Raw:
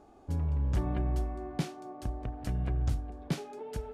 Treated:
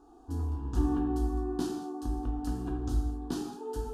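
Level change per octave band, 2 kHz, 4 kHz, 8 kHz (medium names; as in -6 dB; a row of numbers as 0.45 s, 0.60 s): -4.0 dB, -0.5 dB, +2.5 dB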